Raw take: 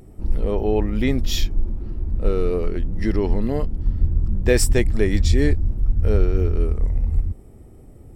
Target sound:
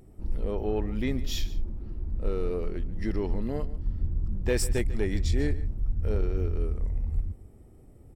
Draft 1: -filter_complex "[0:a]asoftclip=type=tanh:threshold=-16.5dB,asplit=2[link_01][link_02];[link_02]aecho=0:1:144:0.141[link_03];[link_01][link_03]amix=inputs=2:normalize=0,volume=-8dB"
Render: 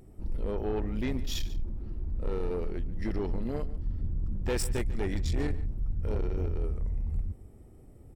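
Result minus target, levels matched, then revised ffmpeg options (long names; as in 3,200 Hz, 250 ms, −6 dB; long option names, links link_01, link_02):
soft clipping: distortion +11 dB
-filter_complex "[0:a]asoftclip=type=tanh:threshold=-7.5dB,asplit=2[link_01][link_02];[link_02]aecho=0:1:144:0.141[link_03];[link_01][link_03]amix=inputs=2:normalize=0,volume=-8dB"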